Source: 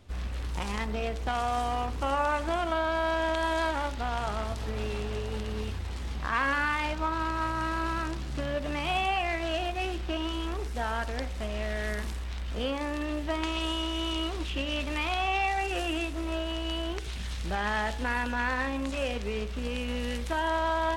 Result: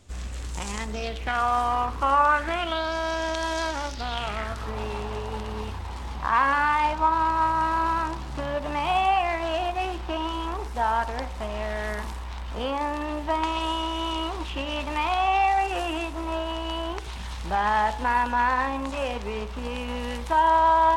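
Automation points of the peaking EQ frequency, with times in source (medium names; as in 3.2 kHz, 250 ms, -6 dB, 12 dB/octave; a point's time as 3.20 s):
peaking EQ +12.5 dB
0.92 s 7.4 kHz
1.46 s 1.1 kHz
2.25 s 1.1 kHz
2.94 s 5.7 kHz
3.92 s 5.7 kHz
4.75 s 930 Hz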